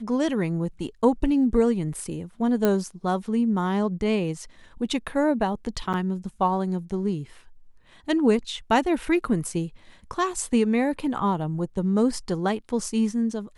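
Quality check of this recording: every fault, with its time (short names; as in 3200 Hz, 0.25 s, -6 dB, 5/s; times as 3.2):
2.65 pop -9 dBFS
5.93–5.94 gap 8 ms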